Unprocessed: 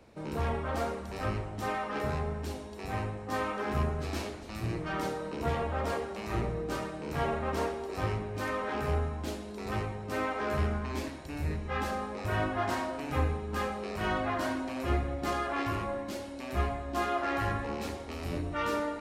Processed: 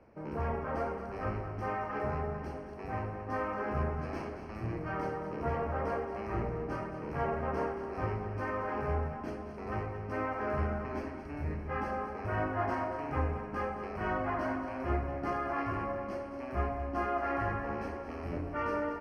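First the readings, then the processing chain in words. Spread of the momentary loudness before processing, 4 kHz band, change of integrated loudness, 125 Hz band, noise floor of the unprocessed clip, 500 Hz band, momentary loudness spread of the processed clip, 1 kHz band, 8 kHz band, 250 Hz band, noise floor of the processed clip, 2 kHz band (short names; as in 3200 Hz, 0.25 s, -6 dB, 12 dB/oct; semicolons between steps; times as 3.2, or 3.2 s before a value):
6 LU, -14.0 dB, -2.0 dB, -3.0 dB, -42 dBFS, -1.5 dB, 6 LU, -1.0 dB, under -15 dB, -2.5 dB, -42 dBFS, -3.0 dB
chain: running mean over 12 samples; low shelf 420 Hz -3.5 dB; on a send: feedback echo 0.223 s, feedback 54%, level -10 dB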